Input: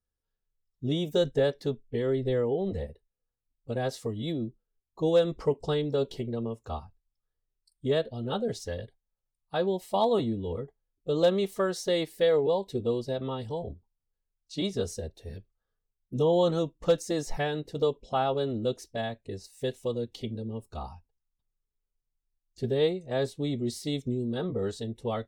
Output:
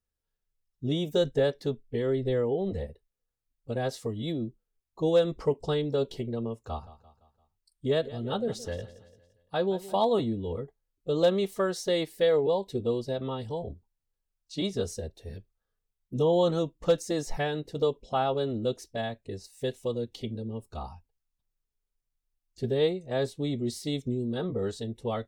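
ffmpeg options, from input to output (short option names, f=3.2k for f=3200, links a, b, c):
-filter_complex "[0:a]asettb=1/sr,asplit=3[a][b][c];[a]atrim=end=6.584[d];[b]atrim=start=6.58:end=9.96,asetpts=PTS-STARTPTS,afade=t=in:d=0.004:c=qsin,afade=t=out:st=3.376:d=0.004:c=qsin,aecho=1:1:171|342|513|684:0.141|0.0692|0.0339|0.0166,atrim=end_sample=149058[e];[c]atrim=start=9.956[f];[d][e]acrossfade=d=0.004:c1=hsin:c2=qsin[g];[g][f]acrossfade=d=0.004:c1=qsin:c2=hsin"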